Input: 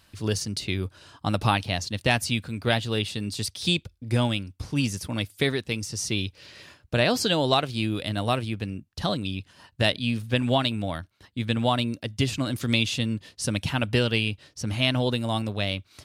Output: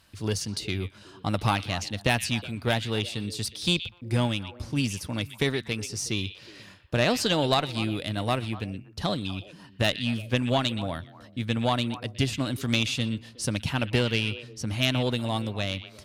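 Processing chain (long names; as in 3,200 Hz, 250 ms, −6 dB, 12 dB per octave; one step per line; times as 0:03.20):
harmonic generator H 4 −15 dB, 6 −25 dB, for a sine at −7 dBFS
echo through a band-pass that steps 122 ms, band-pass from 2,800 Hz, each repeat −1.4 octaves, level −10 dB
level −1.5 dB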